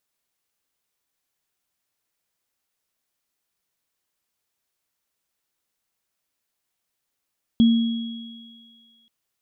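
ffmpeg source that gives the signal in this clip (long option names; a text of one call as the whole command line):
ffmpeg -f lavfi -i "aevalsrc='0.299*pow(10,-3*t/1.54)*sin(2*PI*230*t)+0.0376*pow(10,-3*t/2.96)*sin(2*PI*3320*t)':duration=1.48:sample_rate=44100" out.wav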